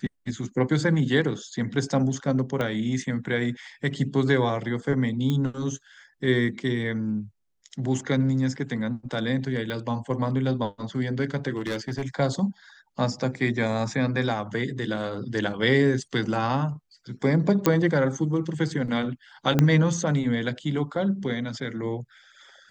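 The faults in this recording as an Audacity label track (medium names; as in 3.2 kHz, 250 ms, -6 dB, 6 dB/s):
2.610000	2.610000	pop -15 dBFS
5.300000	5.300000	pop -15 dBFS
9.700000	9.700000	pop -19 dBFS
11.560000	12.080000	clipped -24.5 dBFS
17.660000	17.660000	pop -6 dBFS
19.590000	19.590000	pop -7 dBFS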